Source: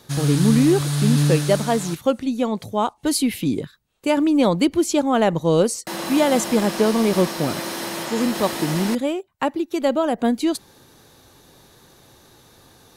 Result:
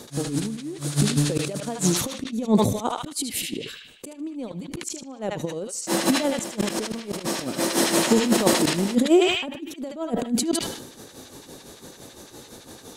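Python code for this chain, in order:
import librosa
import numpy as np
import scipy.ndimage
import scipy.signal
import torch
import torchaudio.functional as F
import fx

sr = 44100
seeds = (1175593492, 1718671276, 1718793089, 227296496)

p1 = fx.graphic_eq(x, sr, hz=(250, 500, 8000), db=(8, 6, 9))
p2 = fx.over_compress(p1, sr, threshold_db=-16.0, ratio=-0.5)
p3 = fx.auto_swell(p2, sr, attack_ms=334.0)
p4 = p3 * (1.0 - 0.98 / 2.0 + 0.98 / 2.0 * np.cos(2.0 * np.pi * 5.9 * (np.arange(len(p3)) / sr)))
p5 = p4 + fx.echo_banded(p4, sr, ms=76, feedback_pct=67, hz=2700.0, wet_db=-9.0, dry=0)
y = fx.sustainer(p5, sr, db_per_s=60.0)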